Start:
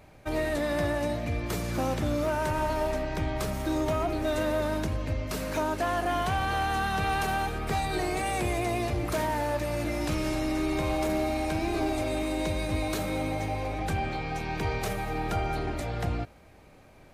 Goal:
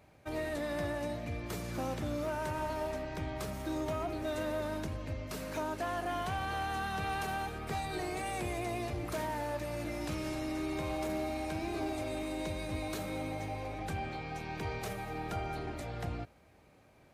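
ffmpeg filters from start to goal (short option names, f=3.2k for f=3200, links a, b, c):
-af "highpass=55,volume=-7.5dB"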